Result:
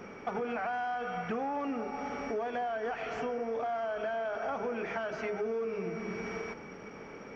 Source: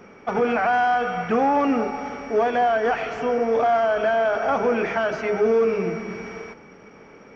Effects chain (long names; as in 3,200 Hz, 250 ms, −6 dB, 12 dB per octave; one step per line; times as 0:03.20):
downward compressor 5 to 1, threshold −34 dBFS, peak gain reduction 15.5 dB